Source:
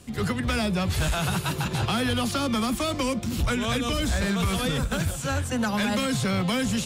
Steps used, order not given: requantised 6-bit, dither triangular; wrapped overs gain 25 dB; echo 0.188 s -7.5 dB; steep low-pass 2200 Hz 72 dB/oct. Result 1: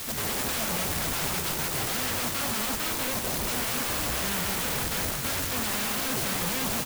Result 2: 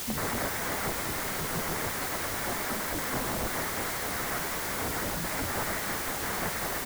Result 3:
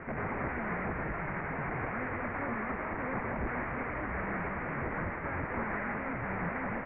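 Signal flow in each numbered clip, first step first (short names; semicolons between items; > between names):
steep low-pass > requantised > wrapped overs > echo; echo > wrapped overs > steep low-pass > requantised; echo > requantised > wrapped overs > steep low-pass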